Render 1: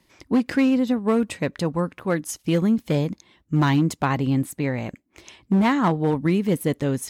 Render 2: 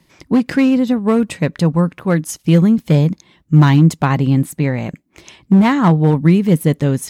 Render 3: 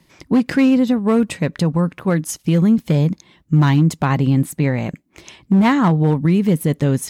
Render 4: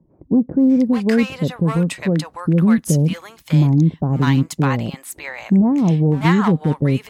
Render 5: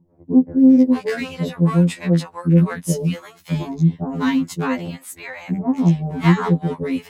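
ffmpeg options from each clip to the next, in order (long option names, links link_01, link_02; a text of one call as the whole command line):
ffmpeg -i in.wav -af "equalizer=frequency=160:width_type=o:width=0.53:gain=8.5,volume=5dB" out.wav
ffmpeg -i in.wav -af "alimiter=limit=-7dB:level=0:latency=1:release=93" out.wav
ffmpeg -i in.wav -filter_complex "[0:a]acrossover=split=700[link_01][link_02];[link_02]adelay=600[link_03];[link_01][link_03]amix=inputs=2:normalize=0" out.wav
ffmpeg -i in.wav -af "afftfilt=real='re*2*eq(mod(b,4),0)':imag='im*2*eq(mod(b,4),0)':win_size=2048:overlap=0.75" out.wav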